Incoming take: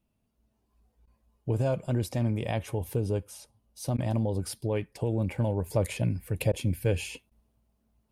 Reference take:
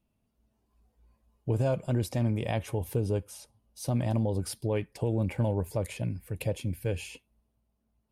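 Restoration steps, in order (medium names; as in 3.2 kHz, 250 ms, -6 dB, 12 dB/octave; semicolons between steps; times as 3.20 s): interpolate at 1.06/3.97/6.52/7.30 s, 12 ms; gain correction -4.5 dB, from 5.70 s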